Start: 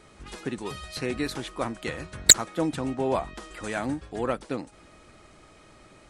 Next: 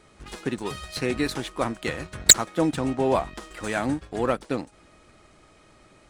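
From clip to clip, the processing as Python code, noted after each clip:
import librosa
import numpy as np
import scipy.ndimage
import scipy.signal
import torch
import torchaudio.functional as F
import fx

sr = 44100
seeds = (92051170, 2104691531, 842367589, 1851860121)

y = fx.leveller(x, sr, passes=1)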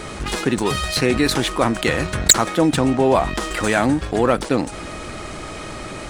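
y = fx.env_flatten(x, sr, amount_pct=50)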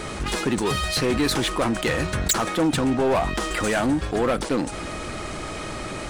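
y = 10.0 ** (-16.0 / 20.0) * np.tanh(x / 10.0 ** (-16.0 / 20.0))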